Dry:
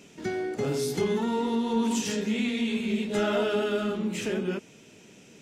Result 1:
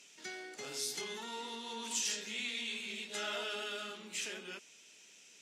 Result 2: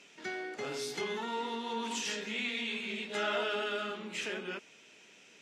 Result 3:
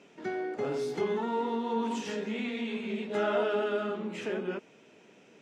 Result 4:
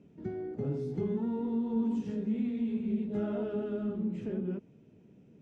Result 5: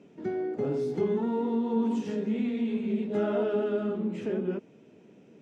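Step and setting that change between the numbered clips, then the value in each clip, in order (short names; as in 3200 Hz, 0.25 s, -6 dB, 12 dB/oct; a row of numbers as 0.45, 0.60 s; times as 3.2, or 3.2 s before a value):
band-pass, frequency: 6000, 2300, 870, 100, 330 Hz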